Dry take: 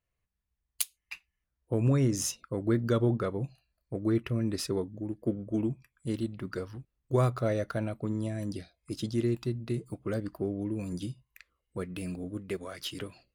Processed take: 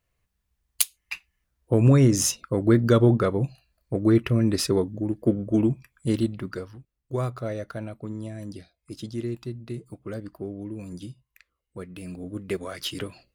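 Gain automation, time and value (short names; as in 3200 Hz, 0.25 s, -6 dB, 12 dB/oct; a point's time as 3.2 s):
6.24 s +8.5 dB
6.78 s -2 dB
12.01 s -2 dB
12.52 s +6 dB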